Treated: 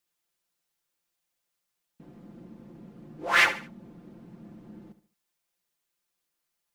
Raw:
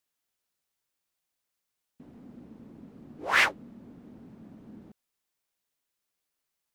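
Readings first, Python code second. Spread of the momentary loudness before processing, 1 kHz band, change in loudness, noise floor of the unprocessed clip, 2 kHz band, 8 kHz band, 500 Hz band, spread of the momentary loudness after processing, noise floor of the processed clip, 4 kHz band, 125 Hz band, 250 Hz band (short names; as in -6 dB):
11 LU, +2.0 dB, +1.5 dB, -84 dBFS, +2.0 dB, +2.0 dB, +2.0 dB, 17 LU, -82 dBFS, +2.0 dB, +3.0 dB, +1.0 dB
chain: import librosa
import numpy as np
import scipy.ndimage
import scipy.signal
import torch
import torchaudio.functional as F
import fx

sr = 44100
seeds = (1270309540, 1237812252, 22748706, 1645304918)

y = x + 0.65 * np.pad(x, (int(5.8 * sr / 1000.0), 0))[:len(x)]
y = fx.echo_feedback(y, sr, ms=72, feedback_pct=35, wet_db=-13.0)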